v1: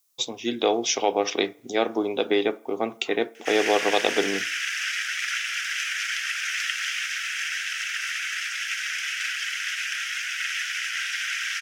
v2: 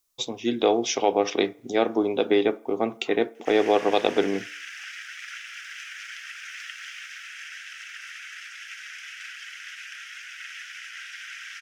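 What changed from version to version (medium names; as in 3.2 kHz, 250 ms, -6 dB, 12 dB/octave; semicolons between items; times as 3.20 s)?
background -9.0 dB; master: add tilt EQ -1.5 dB/octave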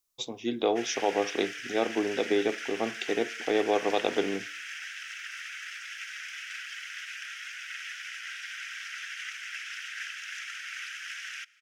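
speech -5.5 dB; background: entry -2.70 s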